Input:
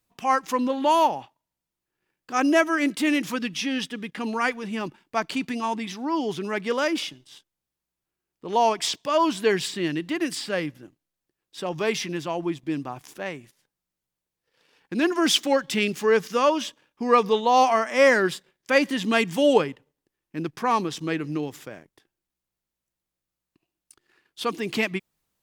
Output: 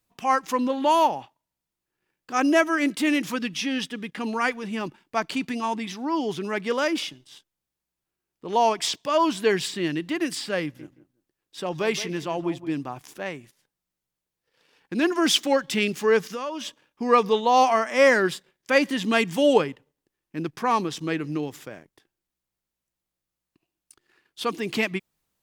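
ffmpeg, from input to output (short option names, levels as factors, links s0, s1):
-filter_complex "[0:a]asettb=1/sr,asplit=3[s0][s1][s2];[s0]atrim=end=10.624[s3];[s1]atrim=start=10.62:end=12.81,asetpts=PTS-STARTPTS,afade=t=in:d=0.004:c=qsin,afade=t=out:st=2.186:d=0.004:c=qsin,asplit=2[s4][s5];[s5]adelay=170,lowpass=f=1800:p=1,volume=0.211,asplit=2[s6][s7];[s7]adelay=170,lowpass=f=1800:p=1,volume=0.18[s8];[s4][s6][s8]amix=inputs=3:normalize=0,atrim=end_sample=96579[s9];[s2]atrim=start=12.806[s10];[s3][s9]acrossfade=d=0.004:c1=hsin:c2=qsin[s11];[s11][s10]acrossfade=d=0.004:c1=qsin:c2=hsin,asettb=1/sr,asplit=3[s12][s13][s14];[s12]atrim=end=16.194[s15];[s13]atrim=start=16.19:end=16.66,asetpts=PTS-STARTPTS,afade=t=in:d=0.004:c=qsin,afade=t=out:st=0.466:d=0.004:c=qsin,acompressor=threshold=0.0282:ratio=3:attack=3.2:release=140:knee=1:detection=peak[s16];[s14]atrim=start=16.656[s17];[s15][s16]acrossfade=d=0.004:c1=hsin:c2=qsin[s18];[s18][s17]acrossfade=d=0.004:c1=qsin:c2=hsin"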